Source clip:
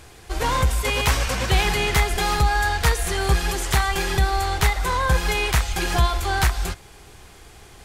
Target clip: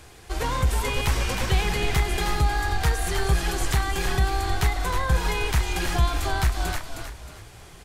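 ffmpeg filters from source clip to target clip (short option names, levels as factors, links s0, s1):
-filter_complex "[0:a]asplit=5[s0][s1][s2][s3][s4];[s1]adelay=313,afreqshift=-54,volume=0.447[s5];[s2]adelay=626,afreqshift=-108,volume=0.143[s6];[s3]adelay=939,afreqshift=-162,volume=0.0457[s7];[s4]adelay=1252,afreqshift=-216,volume=0.0146[s8];[s0][s5][s6][s7][s8]amix=inputs=5:normalize=0,acrossover=split=350[s9][s10];[s10]acompressor=threshold=0.0562:ratio=3[s11];[s9][s11]amix=inputs=2:normalize=0,volume=0.794"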